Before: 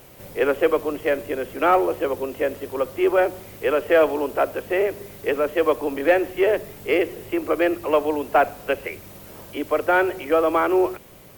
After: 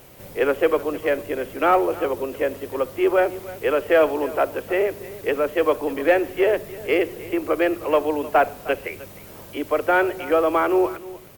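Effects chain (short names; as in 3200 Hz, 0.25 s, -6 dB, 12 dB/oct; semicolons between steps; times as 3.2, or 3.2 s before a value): echo 0.308 s -18 dB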